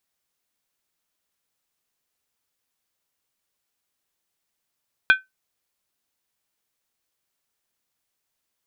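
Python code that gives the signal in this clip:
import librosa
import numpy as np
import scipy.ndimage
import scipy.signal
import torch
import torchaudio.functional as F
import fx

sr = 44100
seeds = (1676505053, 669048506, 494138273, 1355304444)

y = fx.strike_skin(sr, length_s=0.63, level_db=-7.5, hz=1530.0, decay_s=0.17, tilt_db=7, modes=5)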